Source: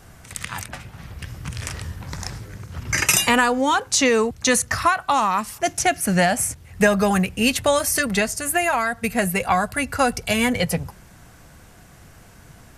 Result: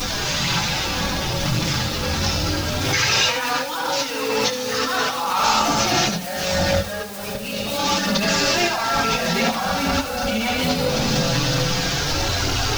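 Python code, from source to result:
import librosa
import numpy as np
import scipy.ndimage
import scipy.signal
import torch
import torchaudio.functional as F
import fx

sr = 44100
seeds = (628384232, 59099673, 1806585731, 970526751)

y = fx.delta_mod(x, sr, bps=32000, step_db=-21.0)
y = fx.highpass(y, sr, hz=480.0, slope=6, at=(2.78, 5.39))
y = fx.rev_fdn(y, sr, rt60_s=3.0, lf_ratio=1.25, hf_ratio=0.5, size_ms=11.0, drr_db=-1.5)
y = fx.over_compress(y, sr, threshold_db=-20.0, ratio=-0.5)
y = fx.peak_eq(y, sr, hz=1800.0, db=-6.0, octaves=0.45)
y = fx.room_early_taps(y, sr, ms=(23, 74), db=(-9.0, -9.5))
y = fx.chorus_voices(y, sr, voices=4, hz=0.23, base_ms=10, depth_ms=4.0, mix_pct=65)
y = fx.high_shelf(y, sr, hz=2500.0, db=7.5)
y = fx.dmg_noise_colour(y, sr, seeds[0], colour='white', level_db=-40.0)
y = fx.pre_swell(y, sr, db_per_s=30.0)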